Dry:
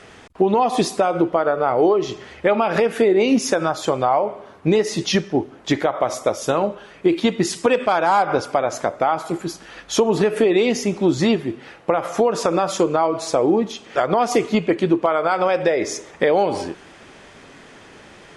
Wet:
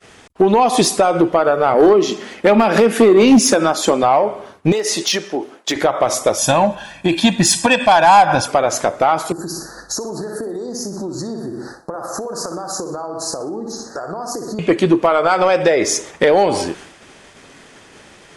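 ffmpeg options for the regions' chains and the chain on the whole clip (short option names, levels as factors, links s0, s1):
-filter_complex "[0:a]asettb=1/sr,asplit=3[s0][s1][s2];[s0]atrim=end=1.744[s3];[s1]atrim=start=1.74:end=4.03,asetpts=PTS-STARTPTS,afade=t=in:d=0.004:c=qsin,afade=t=out:st=2.286:d=0.004:c=qsin,lowshelf=f=150:t=q:w=3:g=-11.5,volume=2.51,asoftclip=hard,volume=0.398[s4];[s2]atrim=start=4.026[s5];[s3][s4]acrossfade=d=0.004:c1=hsin:c2=qsin[s6];[s6][s5]acrossfade=d=0.004:c1=qsin:c2=hsin,asettb=1/sr,asplit=3[s7][s8][s9];[s7]atrim=end=4.724[s10];[s8]atrim=start=4.72:end=5.76,asetpts=PTS-STARTPTS,afade=t=in:d=0.004:c=qsin,afade=t=out:st=1.036:d=0.004:c=qsin,highpass=340,acompressor=threshold=0.0794:ratio=3:attack=3.2:release=140:knee=1:detection=peak,volume=7.5,asoftclip=hard,volume=0.133[s11];[s9]atrim=start=5.756[s12];[s10][s11]acrossfade=d=0.004:c1=hsin:c2=qsin[s13];[s13][s12]acrossfade=d=0.004:c1=qsin:c2=hsin,asettb=1/sr,asplit=3[s14][s15][s16];[s14]atrim=end=6.384[s17];[s15]atrim=start=6.38:end=8.48,asetpts=PTS-STARTPTS,afade=t=in:d=0.004:c=qsin,afade=t=out:st=2.096:d=0.004:c=qsin,equalizer=f=3400:w=3.9:g=2,aecho=1:1:1.2:0.88,atrim=end_sample=92610[s18];[s16]atrim=start=8.476[s19];[s17][s18]acrossfade=d=0.004:c1=hsin:c2=qsin[s20];[s20][s19]acrossfade=d=0.004:c1=qsin:c2=hsin,asettb=1/sr,asplit=3[s21][s22][s23];[s21]atrim=end=9.324[s24];[s22]atrim=start=9.32:end=14.59,asetpts=PTS-STARTPTS,afade=t=in:d=0.004:c=qsin,afade=t=out:st=5.266:d=0.004:c=qsin,aecho=1:1:61|122|183|244|305:0.422|0.19|0.0854|0.0384|0.0173,atrim=end_sample=232407,acompressor=threshold=0.0398:ratio=10:attack=3.2:release=140:knee=1:detection=peak,asuperstop=centerf=2700:order=12:qfactor=1.1[s25];[s23]atrim=start=14.586[s26];[s24][s25]acrossfade=d=0.004:c1=hsin:c2=qsin[s27];[s27][s26]acrossfade=d=0.004:c1=qsin:c2=hsin,agate=range=0.0224:threshold=0.0126:ratio=3:detection=peak,highshelf=f=5300:g=9.5,acontrast=65,volume=0.891"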